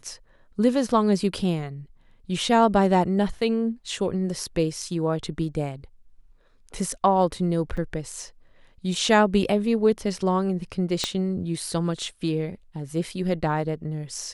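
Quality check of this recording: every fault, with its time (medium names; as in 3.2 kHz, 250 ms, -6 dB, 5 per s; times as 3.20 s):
7.77–7.78 s: dropout 5.3 ms
11.04 s: pop -9 dBFS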